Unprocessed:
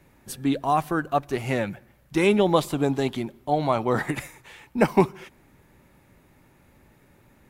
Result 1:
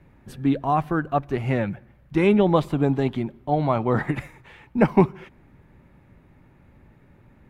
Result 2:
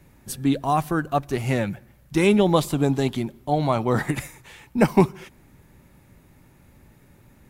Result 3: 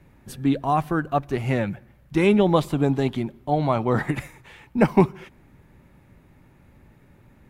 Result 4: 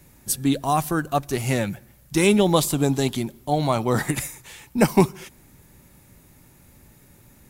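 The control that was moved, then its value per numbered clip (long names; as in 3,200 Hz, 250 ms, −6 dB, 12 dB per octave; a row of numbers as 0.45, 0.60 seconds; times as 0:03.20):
bass and treble, treble: −15, +4, −6, +14 decibels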